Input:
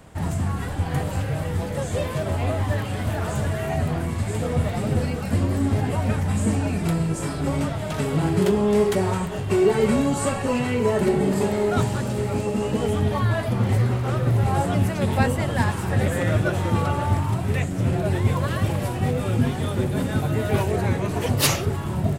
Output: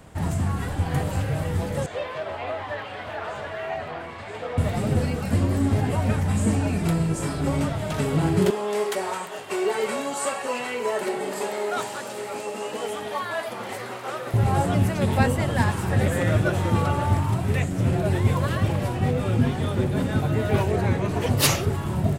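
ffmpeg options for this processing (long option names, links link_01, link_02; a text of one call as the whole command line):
ffmpeg -i in.wav -filter_complex "[0:a]asettb=1/sr,asplit=3[link_01][link_02][link_03];[link_01]atrim=end=1.864[link_04];[link_02]atrim=start=1.86:end=4.58,asetpts=PTS-STARTPTS,afade=type=in:duration=0.004:curve=qsin,afade=type=out:start_time=2.716:duration=0.004:curve=qsin,acrossover=split=440 4300:gain=0.1 1 0.0794[link_05][link_06][link_07];[link_05][link_06][link_07]amix=inputs=3:normalize=0[link_08];[link_03]atrim=start=4.576[link_09];[link_04][link_08]acrossfade=duration=0.004:curve1=hsin:curve2=qsin[link_10];[link_10][link_09]acrossfade=duration=0.004:curve1=qsin:curve2=hsin,asettb=1/sr,asplit=3[link_11][link_12][link_13];[link_11]atrim=end=8.504[link_14];[link_12]atrim=start=8.5:end=14.34,asetpts=PTS-STARTPTS,afade=type=in:duration=0.004:curve=qsin,afade=type=out:start_time=5.836:duration=0.004:curve=qsin,highpass=540[link_15];[link_13]atrim=start=14.336[link_16];[link_14][link_15]acrossfade=duration=0.004:curve1=hsin:curve2=qsin[link_17];[link_17][link_16]acrossfade=duration=0.004:curve1=qsin:curve2=hsin,asettb=1/sr,asplit=3[link_18][link_19][link_20];[link_18]atrim=end=18.554[link_21];[link_19]atrim=start=18.55:end=21.31,asetpts=PTS-STARTPTS,afade=type=in:duration=0.004:curve=qsin,afade=type=out:start_time=2.756:duration=0.004:curve=qsin,equalizer=frequency=12000:width_type=o:width=1.4:gain=-6[link_22];[link_20]atrim=start=21.306[link_23];[link_21][link_22]acrossfade=duration=0.004:curve1=hsin:curve2=qsin[link_24];[link_24][link_23]acrossfade=duration=0.004:curve1=qsin:curve2=hsin" out.wav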